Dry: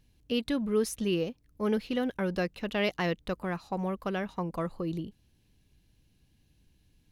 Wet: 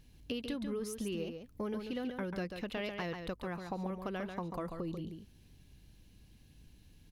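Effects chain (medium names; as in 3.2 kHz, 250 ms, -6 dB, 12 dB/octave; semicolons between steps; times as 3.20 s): compression 5:1, threshold -42 dBFS, peak gain reduction 17.5 dB; hum 50 Hz, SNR 28 dB; on a send: delay 140 ms -6.5 dB; on the sum: trim +4.5 dB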